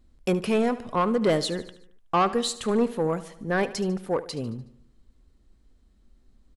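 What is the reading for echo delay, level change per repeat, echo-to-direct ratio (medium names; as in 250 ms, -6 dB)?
74 ms, -5.5 dB, -14.5 dB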